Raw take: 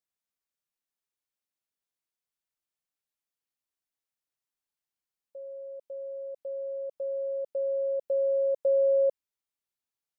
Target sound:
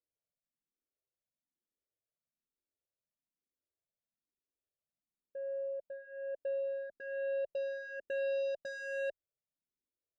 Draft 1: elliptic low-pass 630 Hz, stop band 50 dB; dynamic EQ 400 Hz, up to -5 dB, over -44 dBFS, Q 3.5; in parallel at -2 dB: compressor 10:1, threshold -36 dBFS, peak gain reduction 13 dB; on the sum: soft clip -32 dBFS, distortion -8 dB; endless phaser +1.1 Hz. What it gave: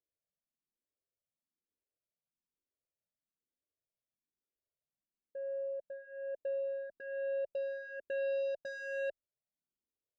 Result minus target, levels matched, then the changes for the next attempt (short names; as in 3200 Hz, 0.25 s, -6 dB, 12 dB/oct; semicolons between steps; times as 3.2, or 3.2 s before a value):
compressor: peak gain reduction +6.5 dB
change: compressor 10:1, threshold -29 dBFS, peak gain reduction 6.5 dB